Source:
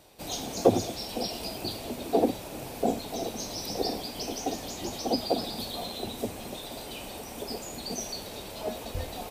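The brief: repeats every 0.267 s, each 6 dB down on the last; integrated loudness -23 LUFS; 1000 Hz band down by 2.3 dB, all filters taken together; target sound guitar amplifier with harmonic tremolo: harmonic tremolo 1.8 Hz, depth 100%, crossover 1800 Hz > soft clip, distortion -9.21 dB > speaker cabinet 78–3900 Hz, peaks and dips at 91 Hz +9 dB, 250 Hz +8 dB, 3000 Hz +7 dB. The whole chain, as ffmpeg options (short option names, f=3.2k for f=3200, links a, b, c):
-filter_complex "[0:a]equalizer=f=1k:t=o:g=-4,aecho=1:1:267|534|801|1068|1335|1602:0.501|0.251|0.125|0.0626|0.0313|0.0157,acrossover=split=1800[a][b];[a]aeval=exprs='val(0)*(1-1/2+1/2*cos(2*PI*1.8*n/s))':c=same[c];[b]aeval=exprs='val(0)*(1-1/2-1/2*cos(2*PI*1.8*n/s))':c=same[d];[c][d]amix=inputs=2:normalize=0,asoftclip=threshold=-25dB,highpass=78,equalizer=f=91:t=q:w=4:g=9,equalizer=f=250:t=q:w=4:g=8,equalizer=f=3k:t=q:w=4:g=7,lowpass=f=3.9k:w=0.5412,lowpass=f=3.9k:w=1.3066,volume=13.5dB"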